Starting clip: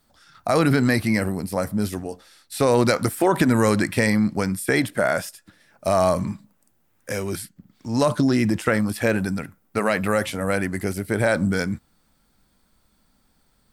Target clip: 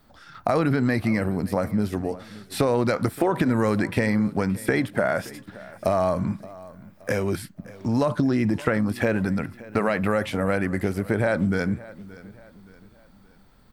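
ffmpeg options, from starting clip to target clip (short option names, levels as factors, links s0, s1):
-filter_complex "[0:a]equalizer=f=9700:t=o:w=2.2:g=-12,acompressor=threshold=0.0282:ratio=3,asplit=2[s0][s1];[s1]aecho=0:1:573|1146|1719:0.106|0.0434|0.0178[s2];[s0][s2]amix=inputs=2:normalize=0,volume=2.66"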